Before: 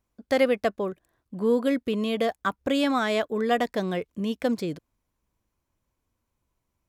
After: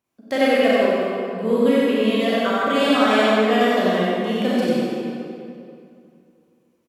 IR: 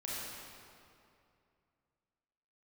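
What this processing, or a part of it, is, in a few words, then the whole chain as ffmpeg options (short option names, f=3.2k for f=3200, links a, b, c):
PA in a hall: -filter_complex "[0:a]highpass=160,equalizer=f=2.8k:t=o:w=0.4:g=4,aecho=1:1:93:0.596[a];[1:a]atrim=start_sample=2205[b];[a][b]afir=irnorm=-1:irlink=0,volume=4.5dB"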